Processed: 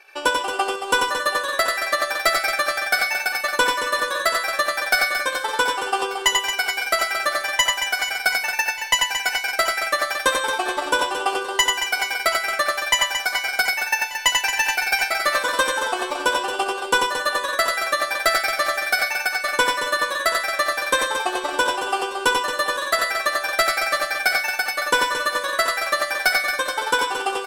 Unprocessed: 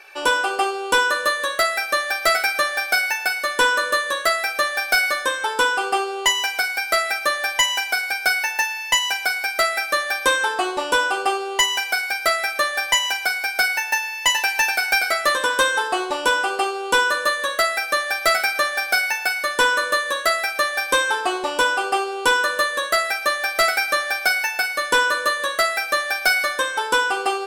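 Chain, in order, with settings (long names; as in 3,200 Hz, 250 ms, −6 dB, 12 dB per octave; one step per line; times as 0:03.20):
delay that plays each chunk backwards 253 ms, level −11 dB
transient designer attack +7 dB, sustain −3 dB
reverse bouncing-ball delay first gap 90 ms, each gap 1.5×, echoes 5
level −6 dB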